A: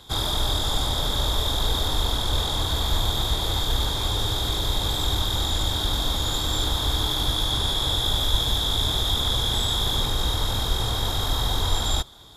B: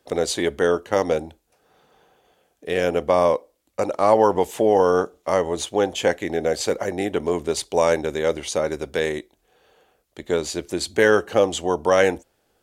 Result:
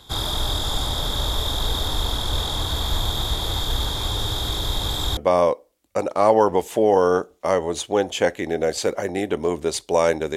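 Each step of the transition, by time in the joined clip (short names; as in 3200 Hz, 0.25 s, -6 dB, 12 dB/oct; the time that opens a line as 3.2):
A
5.17 switch to B from 3 s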